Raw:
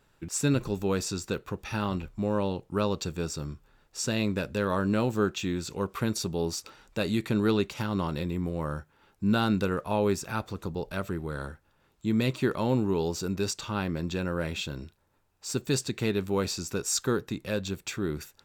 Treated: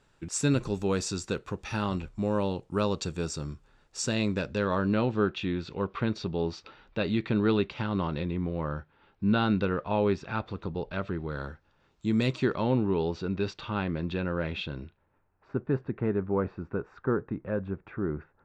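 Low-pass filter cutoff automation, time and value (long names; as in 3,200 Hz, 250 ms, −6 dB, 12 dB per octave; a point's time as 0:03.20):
low-pass filter 24 dB per octave
0:04.01 9,100 Hz
0:05.13 3,900 Hz
0:10.96 3,900 Hz
0:12.24 7,900 Hz
0:12.72 3,700 Hz
0:14.77 3,700 Hz
0:15.54 1,600 Hz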